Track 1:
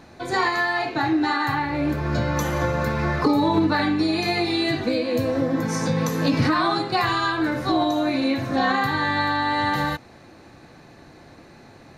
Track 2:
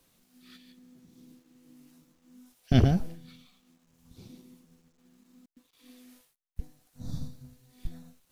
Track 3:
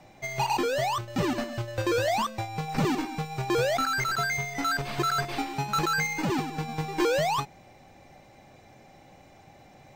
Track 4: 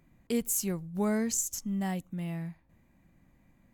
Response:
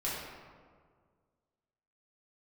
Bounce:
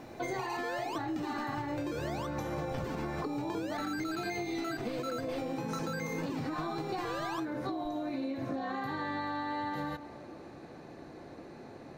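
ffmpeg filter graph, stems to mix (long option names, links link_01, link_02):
-filter_complex "[0:a]equalizer=frequency=420:width_type=o:width=2.6:gain=10,acompressor=threshold=-17dB:ratio=6,volume=-9dB,asplit=2[link_01][link_02];[link_02]volume=-20dB[link_03];[1:a]highshelf=frequency=9700:gain=11,volume=-12dB[link_04];[2:a]acompressor=threshold=-30dB:ratio=4,volume=-1dB[link_05];[4:a]atrim=start_sample=2205[link_06];[link_03][link_06]afir=irnorm=-1:irlink=0[link_07];[link_01][link_04][link_05][link_07]amix=inputs=4:normalize=0,acompressor=threshold=-33dB:ratio=6"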